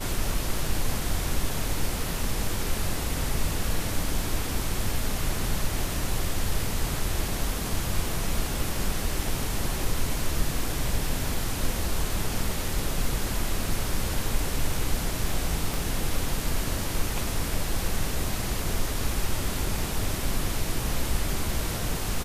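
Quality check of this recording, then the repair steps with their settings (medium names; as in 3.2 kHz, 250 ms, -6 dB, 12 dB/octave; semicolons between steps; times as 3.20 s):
15.74 s: pop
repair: de-click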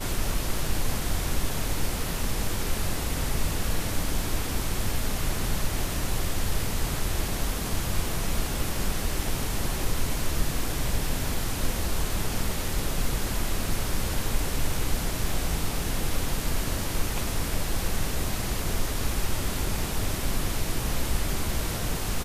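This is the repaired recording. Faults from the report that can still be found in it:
nothing left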